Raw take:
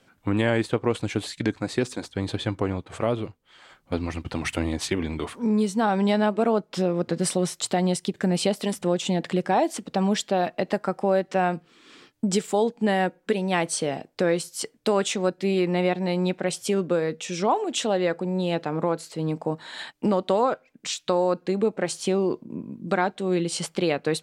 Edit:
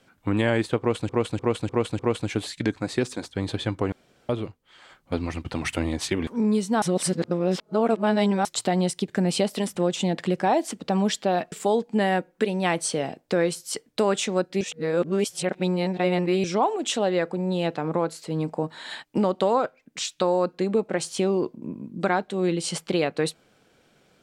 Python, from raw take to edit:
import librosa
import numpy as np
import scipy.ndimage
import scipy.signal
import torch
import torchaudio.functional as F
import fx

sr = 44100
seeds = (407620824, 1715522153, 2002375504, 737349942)

y = fx.edit(x, sr, fx.repeat(start_s=0.79, length_s=0.3, count=5),
    fx.room_tone_fill(start_s=2.72, length_s=0.37),
    fx.cut(start_s=5.07, length_s=0.26),
    fx.reverse_span(start_s=5.88, length_s=1.63),
    fx.cut(start_s=10.58, length_s=1.82),
    fx.reverse_span(start_s=15.49, length_s=1.83), tone=tone)